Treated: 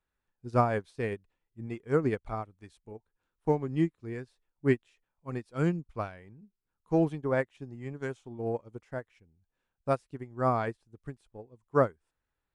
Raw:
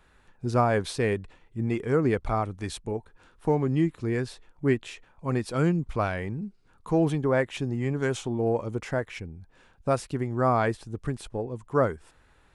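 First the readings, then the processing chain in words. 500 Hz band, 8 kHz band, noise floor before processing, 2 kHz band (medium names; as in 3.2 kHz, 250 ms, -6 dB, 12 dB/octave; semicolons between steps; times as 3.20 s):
-4.5 dB, under -15 dB, -61 dBFS, -6.0 dB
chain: upward expansion 2.5:1, over -36 dBFS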